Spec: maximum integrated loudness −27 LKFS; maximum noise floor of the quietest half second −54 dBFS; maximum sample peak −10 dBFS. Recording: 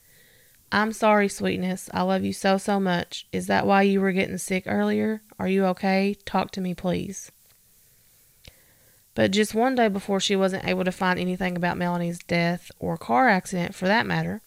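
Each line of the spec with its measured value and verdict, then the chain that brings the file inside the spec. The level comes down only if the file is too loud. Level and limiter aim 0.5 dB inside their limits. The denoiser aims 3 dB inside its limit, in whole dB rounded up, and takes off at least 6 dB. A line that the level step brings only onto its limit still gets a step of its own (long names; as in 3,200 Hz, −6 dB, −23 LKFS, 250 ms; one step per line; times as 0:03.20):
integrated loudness −24.0 LKFS: out of spec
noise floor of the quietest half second −58 dBFS: in spec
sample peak −7.0 dBFS: out of spec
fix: level −3.5 dB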